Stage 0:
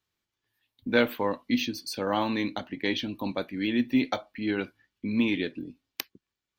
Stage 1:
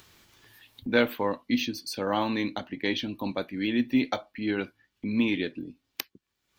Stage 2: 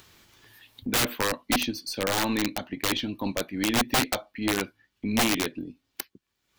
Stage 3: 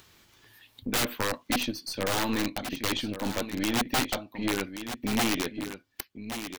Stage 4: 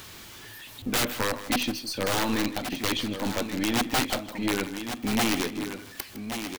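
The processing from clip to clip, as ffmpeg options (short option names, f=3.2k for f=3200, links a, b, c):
-af "acompressor=mode=upward:threshold=-37dB:ratio=2.5"
-af "aeval=exprs='0.473*(cos(1*acos(clip(val(0)/0.473,-1,1)))-cos(1*PI/2))+0.0335*(cos(3*acos(clip(val(0)/0.473,-1,1)))-cos(3*PI/2))+0.015*(cos(7*acos(clip(val(0)/0.473,-1,1)))-cos(7*PI/2))+0.00841*(cos(8*acos(clip(val(0)/0.473,-1,1)))-cos(8*PI/2))':c=same,aeval=exprs='(mod(14.1*val(0)+1,2)-1)/14.1':c=same,volume=6.5dB"
-af "aecho=1:1:1128:0.299,aeval=exprs='(tanh(8.91*val(0)+0.5)-tanh(0.5))/8.91':c=same"
-af "aeval=exprs='val(0)+0.5*0.00841*sgn(val(0))':c=same,aecho=1:1:158:0.2,volume=1dB"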